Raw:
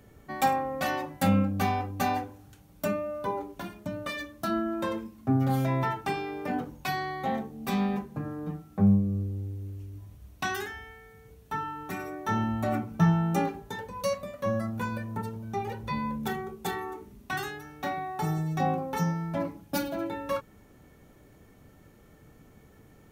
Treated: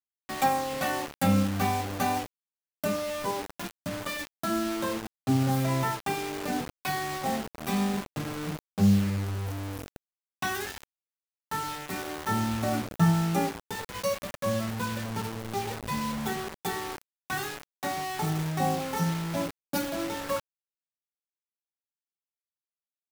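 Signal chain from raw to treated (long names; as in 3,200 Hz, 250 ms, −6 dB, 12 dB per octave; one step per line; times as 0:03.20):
bit reduction 6 bits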